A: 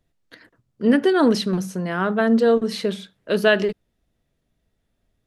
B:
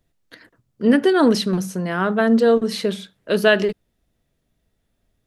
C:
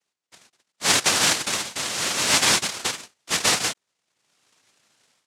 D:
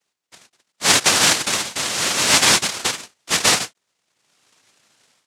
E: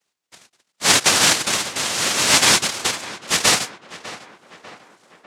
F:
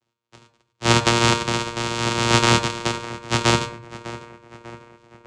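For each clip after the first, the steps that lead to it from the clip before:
high shelf 8100 Hz +4.5 dB; gain +1.5 dB
noise vocoder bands 1; AGC gain up to 16.5 dB; gain -6 dB
ending taper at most 460 dB/s; gain +4.5 dB
tape echo 0.598 s, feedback 62%, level -13.5 dB, low-pass 2300 Hz
vocoder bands 4, saw 117 Hz; reverb RT60 0.50 s, pre-delay 5 ms, DRR 7.5 dB; gain -1 dB

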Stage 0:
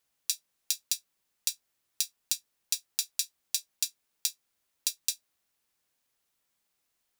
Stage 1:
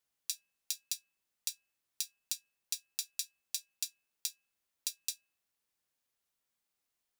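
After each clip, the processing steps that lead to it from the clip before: de-hum 326.2 Hz, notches 9; gain -7 dB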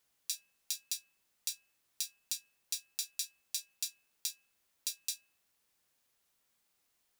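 limiter -22.5 dBFS, peak gain reduction 10.5 dB; gain +8 dB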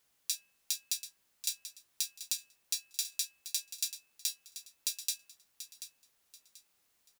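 feedback echo 0.735 s, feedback 29%, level -12 dB; gain +3 dB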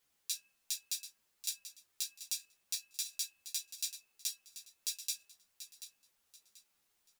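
ensemble effect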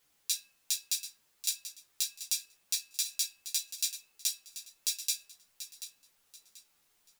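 reverb RT60 0.45 s, pre-delay 7 ms, DRR 13 dB; gain +6 dB

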